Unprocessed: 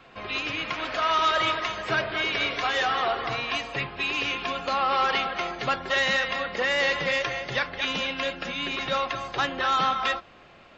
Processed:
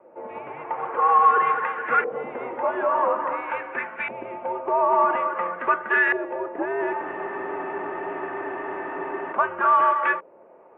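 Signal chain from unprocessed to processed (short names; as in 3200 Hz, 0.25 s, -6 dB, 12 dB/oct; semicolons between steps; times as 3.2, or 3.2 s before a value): LFO low-pass saw up 0.49 Hz 730–1900 Hz; mistuned SSB -170 Hz 480–2900 Hz; spectral freeze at 7.04, 2.29 s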